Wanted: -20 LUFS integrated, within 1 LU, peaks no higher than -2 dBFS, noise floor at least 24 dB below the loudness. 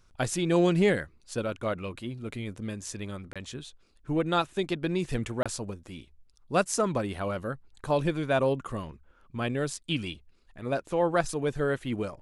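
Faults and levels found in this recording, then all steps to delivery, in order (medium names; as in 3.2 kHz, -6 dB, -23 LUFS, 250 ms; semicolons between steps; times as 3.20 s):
dropouts 2; longest dropout 26 ms; loudness -30.0 LUFS; peak level -10.5 dBFS; loudness target -20.0 LUFS
-> interpolate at 3.33/5.43 s, 26 ms; trim +10 dB; peak limiter -2 dBFS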